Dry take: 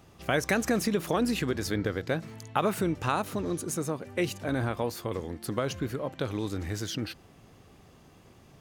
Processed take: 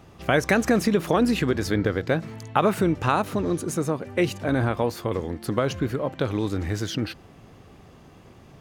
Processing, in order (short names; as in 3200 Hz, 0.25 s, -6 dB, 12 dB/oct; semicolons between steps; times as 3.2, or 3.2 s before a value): high shelf 4300 Hz -7.5 dB; gain +6.5 dB